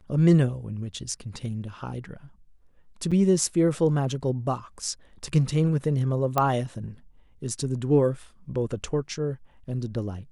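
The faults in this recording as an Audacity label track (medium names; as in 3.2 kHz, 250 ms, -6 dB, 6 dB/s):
3.110000	3.120000	dropout 6.2 ms
6.380000	6.380000	pop -9 dBFS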